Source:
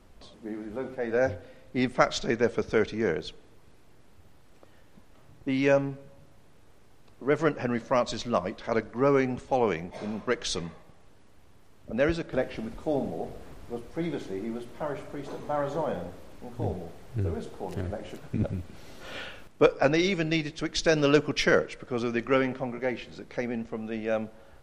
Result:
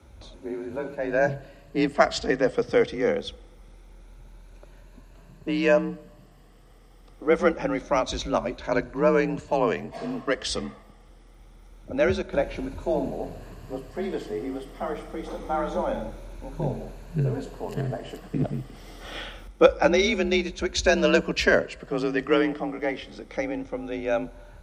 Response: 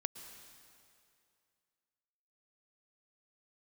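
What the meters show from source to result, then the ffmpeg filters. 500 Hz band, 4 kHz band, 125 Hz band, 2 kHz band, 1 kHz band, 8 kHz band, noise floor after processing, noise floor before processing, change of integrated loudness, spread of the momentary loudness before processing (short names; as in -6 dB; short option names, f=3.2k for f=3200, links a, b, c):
+3.0 dB, +3.0 dB, +1.5 dB, +3.5 dB, +3.0 dB, +2.5 dB, -51 dBFS, -53 dBFS, +3.0 dB, 15 LU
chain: -af "afftfilt=real='re*pow(10,8/40*sin(2*PI*(1.4*log(max(b,1)*sr/1024/100)/log(2)-(0.25)*(pts-256)/sr)))':imag='im*pow(10,8/40*sin(2*PI*(1.4*log(max(b,1)*sr/1024/100)/log(2)-(0.25)*(pts-256)/sr)))':win_size=1024:overlap=0.75,afreqshift=41,volume=2dB"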